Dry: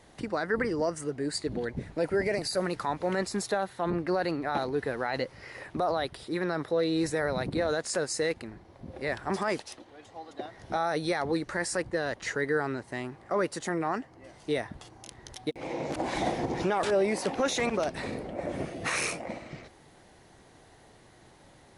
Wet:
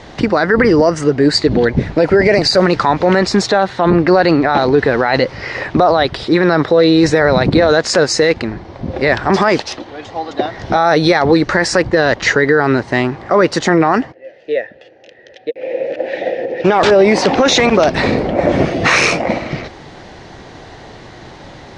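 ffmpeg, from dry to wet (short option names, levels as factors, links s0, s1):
-filter_complex "[0:a]asplit=3[s0][s1][s2];[s0]afade=t=out:st=14.11:d=0.02[s3];[s1]asplit=3[s4][s5][s6];[s4]bandpass=f=530:t=q:w=8,volume=1[s7];[s5]bandpass=f=1840:t=q:w=8,volume=0.501[s8];[s6]bandpass=f=2480:t=q:w=8,volume=0.355[s9];[s7][s8][s9]amix=inputs=3:normalize=0,afade=t=in:st=14.11:d=0.02,afade=t=out:st=16.64:d=0.02[s10];[s2]afade=t=in:st=16.64:d=0.02[s11];[s3][s10][s11]amix=inputs=3:normalize=0,lowpass=f=5800:w=0.5412,lowpass=f=5800:w=1.3066,alimiter=level_in=12.6:limit=0.891:release=50:level=0:latency=1,volume=0.891"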